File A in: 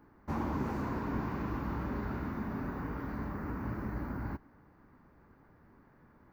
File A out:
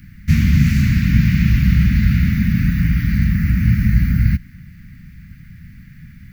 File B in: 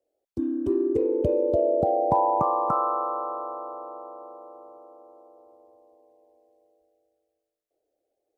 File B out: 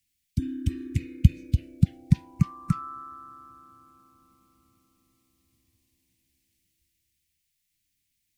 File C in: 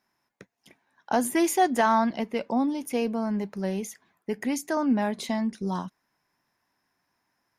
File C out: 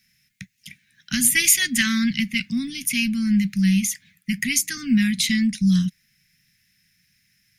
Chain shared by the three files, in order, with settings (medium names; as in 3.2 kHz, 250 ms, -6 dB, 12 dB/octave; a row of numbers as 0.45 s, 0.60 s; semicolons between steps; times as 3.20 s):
elliptic band-stop 180–2100 Hz, stop band 50 dB; peak normalisation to -2 dBFS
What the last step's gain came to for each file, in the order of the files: +26.5 dB, +15.5 dB, +16.0 dB